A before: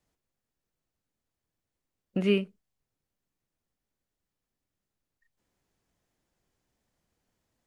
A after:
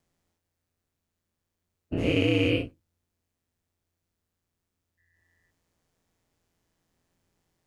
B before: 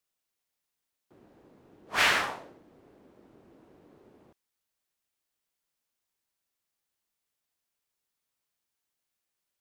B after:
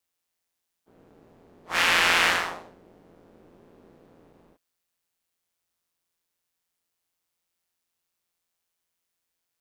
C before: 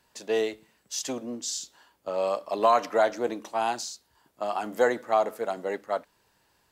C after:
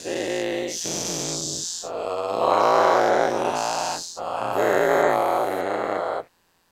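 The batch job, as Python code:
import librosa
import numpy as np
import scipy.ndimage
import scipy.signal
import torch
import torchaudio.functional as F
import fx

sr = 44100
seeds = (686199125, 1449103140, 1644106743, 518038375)

y = fx.spec_dilate(x, sr, span_ms=480)
y = y * np.sin(2.0 * np.pi * 86.0 * np.arange(len(y)) / sr)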